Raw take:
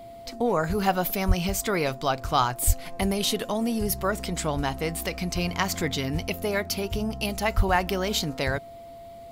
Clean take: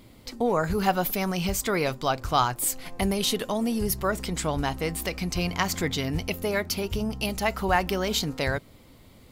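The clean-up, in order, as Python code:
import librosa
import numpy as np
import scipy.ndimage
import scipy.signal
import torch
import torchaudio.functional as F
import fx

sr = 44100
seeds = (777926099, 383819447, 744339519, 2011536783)

y = fx.notch(x, sr, hz=680.0, q=30.0)
y = fx.fix_deplosive(y, sr, at_s=(1.27, 2.66, 7.56))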